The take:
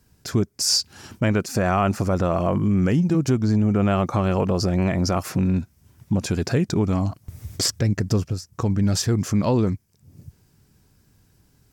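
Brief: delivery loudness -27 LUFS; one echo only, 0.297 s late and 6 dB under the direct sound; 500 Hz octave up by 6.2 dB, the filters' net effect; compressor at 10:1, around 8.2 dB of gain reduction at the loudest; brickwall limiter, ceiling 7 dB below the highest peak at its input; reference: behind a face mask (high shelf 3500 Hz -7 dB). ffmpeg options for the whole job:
-af "equalizer=f=500:t=o:g=8,acompressor=threshold=-21dB:ratio=10,alimiter=limit=-18.5dB:level=0:latency=1,highshelf=f=3.5k:g=-7,aecho=1:1:297:0.501,volume=1dB"

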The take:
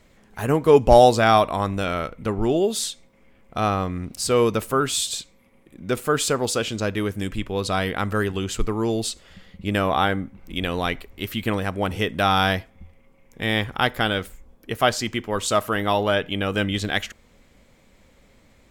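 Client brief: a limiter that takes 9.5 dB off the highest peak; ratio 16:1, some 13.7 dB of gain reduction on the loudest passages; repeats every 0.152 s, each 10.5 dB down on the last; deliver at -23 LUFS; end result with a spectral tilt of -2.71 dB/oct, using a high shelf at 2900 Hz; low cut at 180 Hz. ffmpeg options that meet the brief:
-af "highpass=180,highshelf=f=2.9k:g=6,acompressor=threshold=-21dB:ratio=16,alimiter=limit=-15.5dB:level=0:latency=1,aecho=1:1:152|304|456:0.299|0.0896|0.0269,volume=5.5dB"

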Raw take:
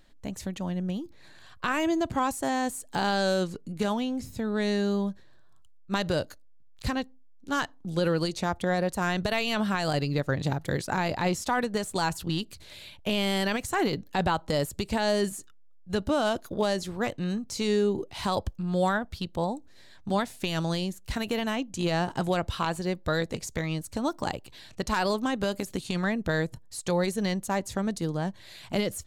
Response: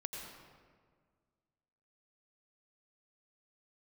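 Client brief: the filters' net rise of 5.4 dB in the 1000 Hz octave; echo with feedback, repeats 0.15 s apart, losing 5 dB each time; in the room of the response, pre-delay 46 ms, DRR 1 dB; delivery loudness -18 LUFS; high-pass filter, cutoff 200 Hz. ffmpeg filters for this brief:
-filter_complex "[0:a]highpass=200,equalizer=f=1k:t=o:g=7,aecho=1:1:150|300|450|600|750|900|1050:0.562|0.315|0.176|0.0988|0.0553|0.031|0.0173,asplit=2[a][b];[1:a]atrim=start_sample=2205,adelay=46[c];[b][c]afir=irnorm=-1:irlink=0,volume=-0.5dB[d];[a][d]amix=inputs=2:normalize=0,volume=6dB"

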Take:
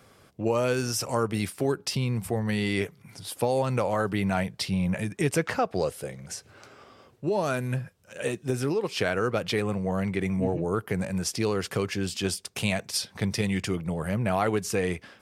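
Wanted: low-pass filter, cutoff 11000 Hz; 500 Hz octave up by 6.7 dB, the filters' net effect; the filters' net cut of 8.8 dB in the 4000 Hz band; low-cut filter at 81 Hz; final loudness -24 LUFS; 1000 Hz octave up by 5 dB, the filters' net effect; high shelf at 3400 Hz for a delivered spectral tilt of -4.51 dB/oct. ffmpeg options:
-af "highpass=81,lowpass=11k,equalizer=f=500:t=o:g=7,equalizer=f=1k:t=o:g=5,highshelf=f=3.4k:g=-5,equalizer=f=4k:t=o:g=-8.5,volume=0.5dB"

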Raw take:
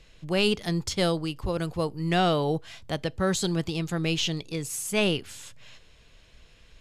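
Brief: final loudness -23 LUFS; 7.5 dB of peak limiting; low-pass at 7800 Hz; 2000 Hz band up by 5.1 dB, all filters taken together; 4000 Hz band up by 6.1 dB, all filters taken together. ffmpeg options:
-af "lowpass=7.8k,equalizer=f=2k:t=o:g=4.5,equalizer=f=4k:t=o:g=6.5,volume=4.5dB,alimiter=limit=-11dB:level=0:latency=1"

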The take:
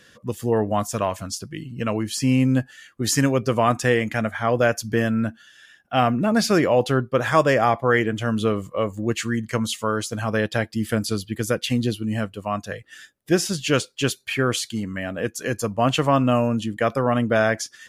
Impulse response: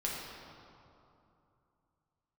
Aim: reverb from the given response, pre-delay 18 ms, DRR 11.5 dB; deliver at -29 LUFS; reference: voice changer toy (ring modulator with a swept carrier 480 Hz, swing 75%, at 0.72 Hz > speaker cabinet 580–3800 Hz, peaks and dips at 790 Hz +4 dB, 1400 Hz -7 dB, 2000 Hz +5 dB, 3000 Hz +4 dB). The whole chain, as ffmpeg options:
-filter_complex "[0:a]asplit=2[a][b];[1:a]atrim=start_sample=2205,adelay=18[c];[b][c]afir=irnorm=-1:irlink=0,volume=-15.5dB[d];[a][d]amix=inputs=2:normalize=0,aeval=exprs='val(0)*sin(2*PI*480*n/s+480*0.75/0.72*sin(2*PI*0.72*n/s))':c=same,highpass=580,equalizer=f=790:t=q:w=4:g=4,equalizer=f=1.4k:t=q:w=4:g=-7,equalizer=f=2k:t=q:w=4:g=5,equalizer=f=3k:t=q:w=4:g=4,lowpass=f=3.8k:w=0.5412,lowpass=f=3.8k:w=1.3066,volume=-2dB"

